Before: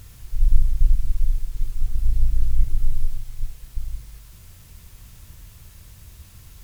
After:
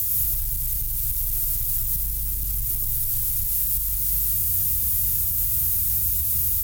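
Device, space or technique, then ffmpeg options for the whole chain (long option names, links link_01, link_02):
FM broadcast chain: -filter_complex "[0:a]highpass=46,dynaudnorm=framelen=100:gausssize=3:maxgain=12dB,acrossover=split=91|200[link_01][link_02][link_03];[link_01]acompressor=threshold=-30dB:ratio=4[link_04];[link_02]acompressor=threshold=-43dB:ratio=4[link_05];[link_03]acompressor=threshold=-51dB:ratio=4[link_06];[link_04][link_05][link_06]amix=inputs=3:normalize=0,aemphasis=mode=production:type=50fm,alimiter=limit=-23.5dB:level=0:latency=1:release=98,asoftclip=type=hard:threshold=-27dB,lowpass=frequency=15000:width=0.5412,lowpass=frequency=15000:width=1.3066,aemphasis=mode=production:type=50fm,volume=4dB"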